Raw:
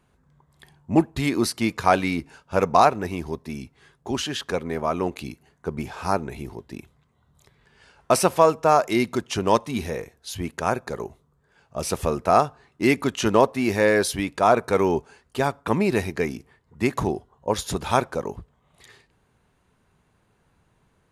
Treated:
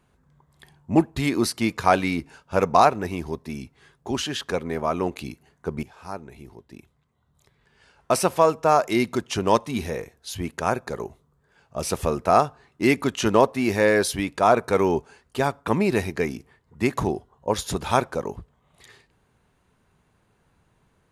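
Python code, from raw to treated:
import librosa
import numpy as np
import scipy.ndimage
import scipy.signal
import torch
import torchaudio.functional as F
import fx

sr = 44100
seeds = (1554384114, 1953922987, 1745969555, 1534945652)

y = fx.edit(x, sr, fx.fade_in_from(start_s=5.83, length_s=3.21, floor_db=-14.0), tone=tone)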